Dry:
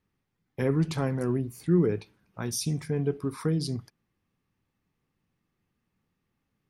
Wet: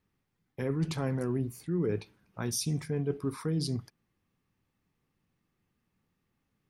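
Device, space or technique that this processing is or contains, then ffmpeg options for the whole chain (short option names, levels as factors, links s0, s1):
compression on the reversed sound: -af "areverse,acompressor=threshold=0.0501:ratio=12,areverse"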